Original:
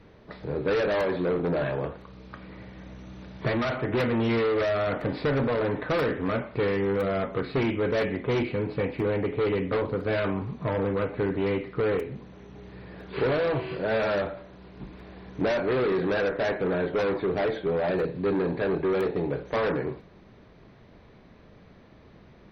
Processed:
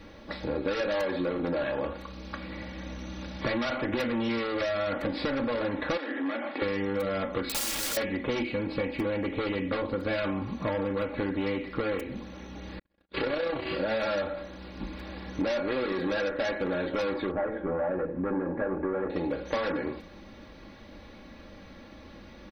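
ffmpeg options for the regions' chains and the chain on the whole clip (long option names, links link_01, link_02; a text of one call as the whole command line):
ffmpeg -i in.wav -filter_complex "[0:a]asettb=1/sr,asplit=3[link_01][link_02][link_03];[link_01]atrim=end=5.974[link_04];[link_02]atrim=start=5.97:end=6.62,asetpts=PTS-STARTPTS,afade=type=in:duration=0.004:curve=qsin,afade=type=out:start_time=0.646:duration=0.004:curve=qsin,acompressor=threshold=-34dB:ratio=10:attack=3.2:release=140:knee=1:detection=peak,highpass=frequency=260:width=0.5412,highpass=frequency=260:width=1.3066,equalizer=frequency=280:width_type=q:width=4:gain=8,equalizer=frequency=460:width_type=q:width=4:gain=-3,equalizer=frequency=770:width_type=q:width=4:gain=7,equalizer=frequency=1800:width_type=q:width=4:gain=8,equalizer=frequency=3300:width_type=q:width=4:gain=4,lowpass=frequency=4700:width=0.5412,lowpass=frequency=4700:width=1.3066[link_05];[link_03]atrim=start=6.616[link_06];[link_04][link_05]acrossfade=duration=0.004:curve1=hsin:curve2=qsin[link_07];[link_07][link_06]acrossfade=duration=0.004:curve1=qsin:curve2=hsin,asettb=1/sr,asplit=3[link_08][link_09][link_10];[link_08]atrim=end=7.484[link_11];[link_09]atrim=start=7.48:end=7.97,asetpts=PTS-STARTPTS,afade=type=in:duration=0.004:curve=qsin,afade=type=out:start_time=0.486:duration=0.004:curve=qsin,equalizer=frequency=4600:width=1.7:gain=4.5,aeval=exprs='(mod(33.5*val(0)+1,2)-1)/33.5':channel_layout=same[link_12];[link_10]atrim=start=7.966[link_13];[link_11][link_12]acrossfade=duration=0.004:curve1=hsin:curve2=qsin[link_14];[link_14][link_13]acrossfade=duration=0.004:curve1=qsin:curve2=hsin,asettb=1/sr,asplit=3[link_15][link_16][link_17];[link_15]atrim=end=12.794[link_18];[link_16]atrim=start=12.79:end=13.66,asetpts=PTS-STARTPTS,afade=type=in:duration=0.004:curve=qsin,afade=type=out:start_time=0.866:duration=0.004:curve=qsin,agate=range=-56dB:threshold=-39dB:ratio=16:release=100:detection=peak,tremolo=f=31:d=0.519[link_19];[link_17]atrim=start=13.656[link_20];[link_18][link_19]acrossfade=duration=0.004:curve1=hsin:curve2=qsin[link_21];[link_21][link_20]acrossfade=duration=0.004:curve1=qsin:curve2=hsin,asettb=1/sr,asplit=3[link_22][link_23][link_24];[link_22]atrim=end=17.314[link_25];[link_23]atrim=start=17.31:end=19.1,asetpts=PTS-STARTPTS,afade=type=in:duration=0.004:curve=qsin,afade=type=out:start_time=1.786:duration=0.004:curve=qsin,lowpass=frequency=1600:width=0.5412,lowpass=frequency=1600:width=1.3066,bandreject=frequency=50:width_type=h:width=6,bandreject=frequency=100:width_type=h:width=6,bandreject=frequency=150:width_type=h:width=6,bandreject=frequency=200:width_type=h:width=6,bandreject=frequency=250:width_type=h:width=6,bandreject=frequency=300:width_type=h:width=6,bandreject=frequency=350:width_type=h:width=6,bandreject=frequency=400:width_type=h:width=6,bandreject=frequency=450:width_type=h:width=6,bandreject=frequency=500:width_type=h:width=6[link_26];[link_24]atrim=start=19.096[link_27];[link_25][link_26]acrossfade=duration=0.004:curve1=hsin:curve2=qsin[link_28];[link_28][link_27]acrossfade=duration=0.004:curve1=qsin:curve2=hsin,highshelf=frequency=3300:gain=9,aecho=1:1:3.6:0.7,acompressor=threshold=-30dB:ratio=6,volume=3dB" out.wav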